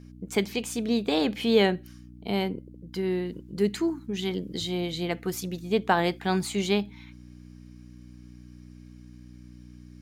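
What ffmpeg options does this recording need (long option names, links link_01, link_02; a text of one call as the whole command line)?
ffmpeg -i in.wav -af "bandreject=frequency=60.8:width_type=h:width=4,bandreject=frequency=121.6:width_type=h:width=4,bandreject=frequency=182.4:width_type=h:width=4,bandreject=frequency=243.2:width_type=h:width=4,bandreject=frequency=304:width_type=h:width=4" out.wav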